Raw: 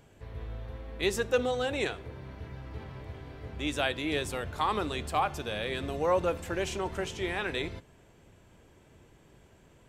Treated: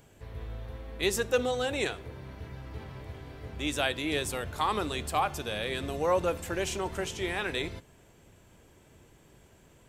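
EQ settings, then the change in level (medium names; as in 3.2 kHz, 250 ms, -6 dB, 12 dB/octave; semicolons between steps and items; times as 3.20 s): treble shelf 6.4 kHz +8.5 dB; 0.0 dB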